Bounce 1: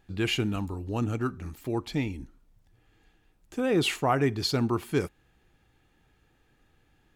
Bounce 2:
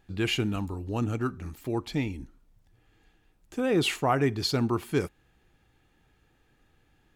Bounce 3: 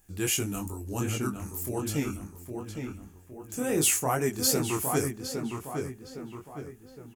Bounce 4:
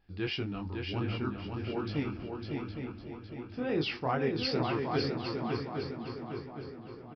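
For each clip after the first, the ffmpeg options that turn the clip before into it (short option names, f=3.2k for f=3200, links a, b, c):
-af anull
-filter_complex "[0:a]aexciter=amount=5.6:drive=8.9:freq=5.8k,asplit=2[a][b];[b]adelay=812,lowpass=f=2.9k:p=1,volume=-5dB,asplit=2[c][d];[d]adelay=812,lowpass=f=2.9k:p=1,volume=0.47,asplit=2[e][f];[f]adelay=812,lowpass=f=2.9k:p=1,volume=0.47,asplit=2[g][h];[h]adelay=812,lowpass=f=2.9k:p=1,volume=0.47,asplit=2[i][j];[j]adelay=812,lowpass=f=2.9k:p=1,volume=0.47,asplit=2[k][l];[l]adelay=812,lowpass=f=2.9k:p=1,volume=0.47[m];[a][c][e][g][i][k][m]amix=inputs=7:normalize=0,flanger=delay=19:depth=5.5:speed=2.6"
-af "aecho=1:1:554|1108|1662|2216:0.596|0.185|0.0572|0.0177,aresample=11025,aresample=44100,volume=-3.5dB"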